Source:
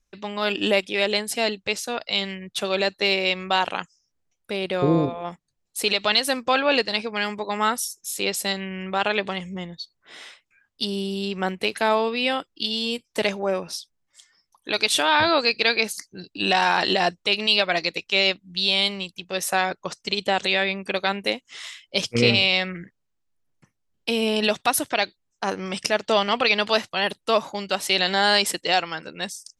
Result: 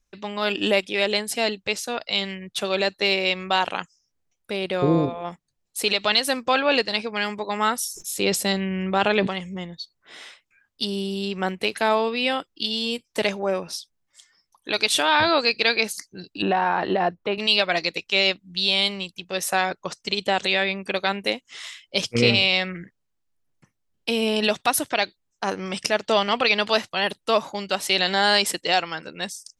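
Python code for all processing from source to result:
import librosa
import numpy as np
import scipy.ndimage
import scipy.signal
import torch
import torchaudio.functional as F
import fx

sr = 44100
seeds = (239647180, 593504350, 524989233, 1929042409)

y = fx.chain(x, sr, fx.low_shelf(hz=500.0, db=7.5),
    fx.sustainer(db_per_s=81.0), at=(7.86, 9.27))
y = fx.chain(y, sr, fx.lowpass(hz=1400.0, slope=12),
    fx.band_squash(depth_pct=70), at=(16.42, 17.38))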